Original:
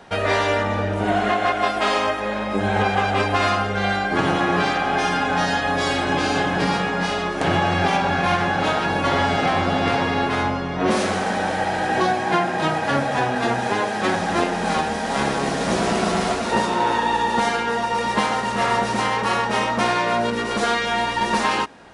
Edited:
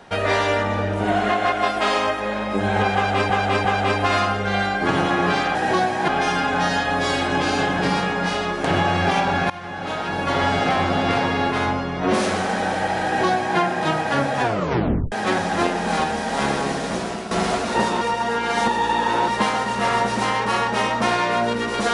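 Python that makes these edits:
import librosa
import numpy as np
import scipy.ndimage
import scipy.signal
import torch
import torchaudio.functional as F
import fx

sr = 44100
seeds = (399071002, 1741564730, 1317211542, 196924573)

y = fx.edit(x, sr, fx.repeat(start_s=2.95, length_s=0.35, count=3),
    fx.fade_in_from(start_s=8.27, length_s=0.99, floor_db=-19.0),
    fx.duplicate(start_s=11.82, length_s=0.53, to_s=4.85),
    fx.tape_stop(start_s=13.2, length_s=0.69),
    fx.fade_out_to(start_s=15.36, length_s=0.72, floor_db=-12.5),
    fx.reverse_span(start_s=16.78, length_s=1.27), tone=tone)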